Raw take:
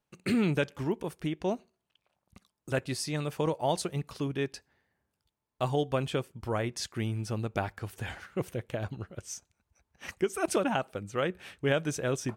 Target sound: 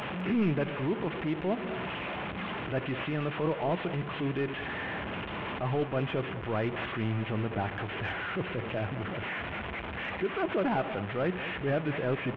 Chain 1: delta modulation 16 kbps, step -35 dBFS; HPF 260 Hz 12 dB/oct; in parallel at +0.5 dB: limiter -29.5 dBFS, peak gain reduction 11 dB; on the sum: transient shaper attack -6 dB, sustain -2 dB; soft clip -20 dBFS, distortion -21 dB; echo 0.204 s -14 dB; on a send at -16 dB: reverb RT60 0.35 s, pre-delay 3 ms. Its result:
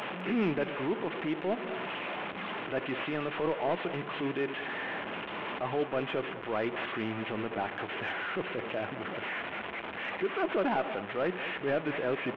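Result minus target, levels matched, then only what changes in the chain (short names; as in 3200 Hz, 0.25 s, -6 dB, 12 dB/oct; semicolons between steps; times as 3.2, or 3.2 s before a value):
125 Hz band -9.0 dB
change: HPF 82 Hz 12 dB/oct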